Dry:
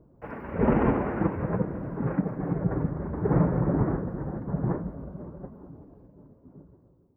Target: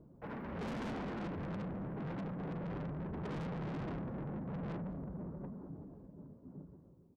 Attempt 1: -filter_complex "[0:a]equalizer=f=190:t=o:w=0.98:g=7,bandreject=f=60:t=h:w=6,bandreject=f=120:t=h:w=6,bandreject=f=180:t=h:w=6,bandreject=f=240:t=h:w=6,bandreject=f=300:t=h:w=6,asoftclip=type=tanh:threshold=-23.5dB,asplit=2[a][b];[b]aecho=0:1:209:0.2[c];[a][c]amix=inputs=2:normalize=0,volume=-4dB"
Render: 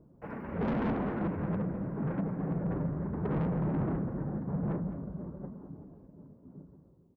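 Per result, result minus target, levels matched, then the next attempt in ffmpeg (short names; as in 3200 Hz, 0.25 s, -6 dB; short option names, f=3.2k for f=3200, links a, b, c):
echo-to-direct +8.5 dB; soft clip: distortion -5 dB
-filter_complex "[0:a]equalizer=f=190:t=o:w=0.98:g=7,bandreject=f=60:t=h:w=6,bandreject=f=120:t=h:w=6,bandreject=f=180:t=h:w=6,bandreject=f=240:t=h:w=6,bandreject=f=300:t=h:w=6,asoftclip=type=tanh:threshold=-23.5dB,asplit=2[a][b];[b]aecho=0:1:209:0.075[c];[a][c]amix=inputs=2:normalize=0,volume=-4dB"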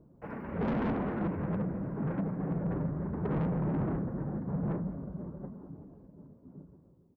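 soft clip: distortion -5 dB
-filter_complex "[0:a]equalizer=f=190:t=o:w=0.98:g=7,bandreject=f=60:t=h:w=6,bandreject=f=120:t=h:w=6,bandreject=f=180:t=h:w=6,bandreject=f=240:t=h:w=6,bandreject=f=300:t=h:w=6,asoftclip=type=tanh:threshold=-35dB,asplit=2[a][b];[b]aecho=0:1:209:0.075[c];[a][c]amix=inputs=2:normalize=0,volume=-4dB"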